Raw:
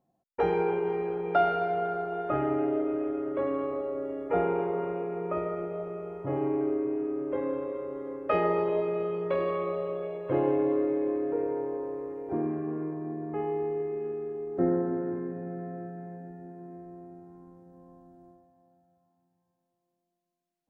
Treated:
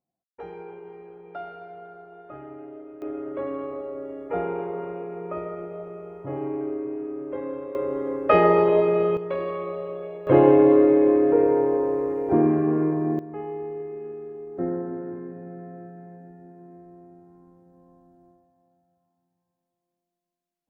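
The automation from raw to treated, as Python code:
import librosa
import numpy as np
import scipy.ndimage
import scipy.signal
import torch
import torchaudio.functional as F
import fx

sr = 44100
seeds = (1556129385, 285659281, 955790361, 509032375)

y = fx.gain(x, sr, db=fx.steps((0.0, -13.0), (3.02, -1.0), (7.75, 9.0), (9.17, 0.0), (10.27, 11.0), (13.19, -2.0)))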